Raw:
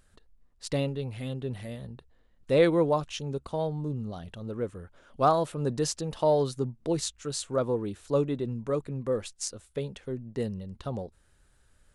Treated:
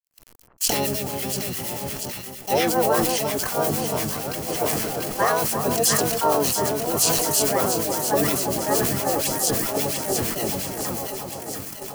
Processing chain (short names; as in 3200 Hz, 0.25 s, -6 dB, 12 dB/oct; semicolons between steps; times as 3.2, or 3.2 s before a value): low shelf 89 Hz +8.5 dB; requantised 8-bit, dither none; RIAA curve recording; compressor 8:1, threshold -26 dBFS, peak gain reduction 9 dB; harmonic tremolo 8.6 Hz, depth 70%, crossover 1400 Hz; harmoniser -7 st -7 dB, +7 st -1 dB; notch 3700 Hz, Q 8.5; on a send: echo with dull and thin repeats by turns 0.344 s, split 1300 Hz, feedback 84%, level -6 dB; on the sum: gate -42 dBFS, range -28 dB; sustainer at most 24 dB/s; gain +7.5 dB